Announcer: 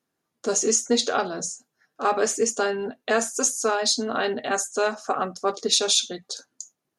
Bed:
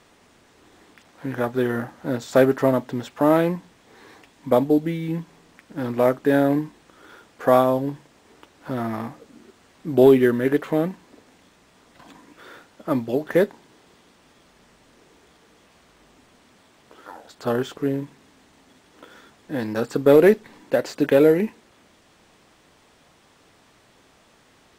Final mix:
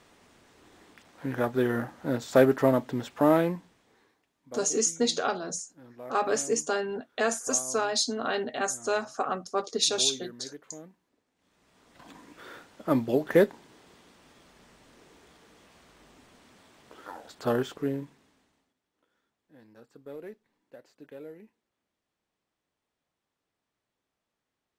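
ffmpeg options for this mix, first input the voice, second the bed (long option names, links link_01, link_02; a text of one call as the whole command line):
ffmpeg -i stem1.wav -i stem2.wav -filter_complex "[0:a]adelay=4100,volume=-4.5dB[link_01];[1:a]volume=19dB,afade=type=out:start_time=3.23:duration=0.92:silence=0.0891251,afade=type=in:start_time=11.35:duration=0.86:silence=0.0749894,afade=type=out:start_time=17.28:duration=1.46:silence=0.0446684[link_02];[link_01][link_02]amix=inputs=2:normalize=0" out.wav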